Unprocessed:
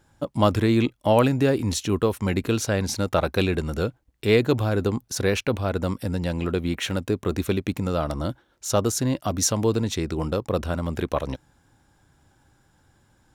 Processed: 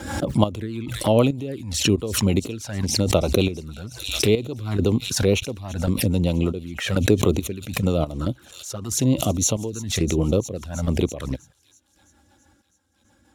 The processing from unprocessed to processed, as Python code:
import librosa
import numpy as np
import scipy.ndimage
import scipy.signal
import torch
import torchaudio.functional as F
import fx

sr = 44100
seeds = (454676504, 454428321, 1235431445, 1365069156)

p1 = scipy.signal.sosfilt(scipy.signal.butter(4, 62.0, 'highpass', fs=sr, output='sos'), x)
p2 = fx.rider(p1, sr, range_db=3, speed_s=0.5)
p3 = p1 + F.gain(torch.from_numpy(p2), 2.5).numpy()
p4 = fx.step_gate(p3, sr, bpm=69, pattern='xx..xx..x.x..x', floor_db=-12.0, edge_ms=4.5)
p5 = fx.env_flanger(p4, sr, rest_ms=3.8, full_db=-16.5)
p6 = fx.rotary(p5, sr, hz=6.3)
p7 = p6 + fx.echo_wet_highpass(p6, sr, ms=329, feedback_pct=68, hz=5100.0, wet_db=-14.5, dry=0)
p8 = fx.pre_swell(p7, sr, db_per_s=66.0)
y = F.gain(torch.from_numpy(p8), -1.5).numpy()